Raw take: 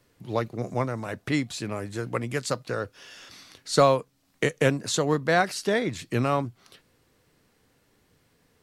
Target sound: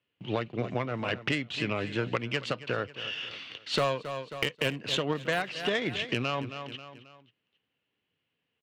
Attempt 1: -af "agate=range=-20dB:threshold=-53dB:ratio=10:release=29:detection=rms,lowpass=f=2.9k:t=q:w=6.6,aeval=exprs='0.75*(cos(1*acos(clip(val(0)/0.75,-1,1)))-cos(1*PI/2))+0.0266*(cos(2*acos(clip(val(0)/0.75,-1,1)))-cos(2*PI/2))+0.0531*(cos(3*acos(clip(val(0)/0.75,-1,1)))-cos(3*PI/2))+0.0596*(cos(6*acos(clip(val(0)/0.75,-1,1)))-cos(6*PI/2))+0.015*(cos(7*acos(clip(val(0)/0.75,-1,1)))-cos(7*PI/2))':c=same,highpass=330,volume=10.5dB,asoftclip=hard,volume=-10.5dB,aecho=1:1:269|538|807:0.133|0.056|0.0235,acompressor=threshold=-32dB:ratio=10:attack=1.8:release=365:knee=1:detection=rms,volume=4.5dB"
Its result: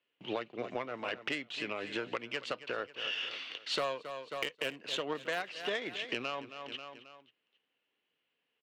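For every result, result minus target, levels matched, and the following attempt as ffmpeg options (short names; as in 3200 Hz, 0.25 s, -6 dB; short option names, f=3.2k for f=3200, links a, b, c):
125 Hz band -13.5 dB; compressor: peak gain reduction +6.5 dB
-af "agate=range=-20dB:threshold=-53dB:ratio=10:release=29:detection=rms,lowpass=f=2.9k:t=q:w=6.6,aeval=exprs='0.75*(cos(1*acos(clip(val(0)/0.75,-1,1)))-cos(1*PI/2))+0.0266*(cos(2*acos(clip(val(0)/0.75,-1,1)))-cos(2*PI/2))+0.0531*(cos(3*acos(clip(val(0)/0.75,-1,1)))-cos(3*PI/2))+0.0596*(cos(6*acos(clip(val(0)/0.75,-1,1)))-cos(6*PI/2))+0.015*(cos(7*acos(clip(val(0)/0.75,-1,1)))-cos(7*PI/2))':c=same,highpass=100,volume=10.5dB,asoftclip=hard,volume=-10.5dB,aecho=1:1:269|538|807:0.133|0.056|0.0235,acompressor=threshold=-32dB:ratio=10:attack=1.8:release=365:knee=1:detection=rms,volume=4.5dB"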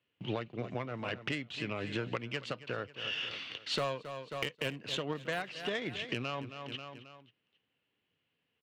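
compressor: peak gain reduction +7 dB
-af "agate=range=-20dB:threshold=-53dB:ratio=10:release=29:detection=rms,lowpass=f=2.9k:t=q:w=6.6,aeval=exprs='0.75*(cos(1*acos(clip(val(0)/0.75,-1,1)))-cos(1*PI/2))+0.0266*(cos(2*acos(clip(val(0)/0.75,-1,1)))-cos(2*PI/2))+0.0531*(cos(3*acos(clip(val(0)/0.75,-1,1)))-cos(3*PI/2))+0.0596*(cos(6*acos(clip(val(0)/0.75,-1,1)))-cos(6*PI/2))+0.015*(cos(7*acos(clip(val(0)/0.75,-1,1)))-cos(7*PI/2))':c=same,highpass=100,volume=10.5dB,asoftclip=hard,volume=-10.5dB,aecho=1:1:269|538|807:0.133|0.056|0.0235,acompressor=threshold=-24.5dB:ratio=10:attack=1.8:release=365:knee=1:detection=rms,volume=4.5dB"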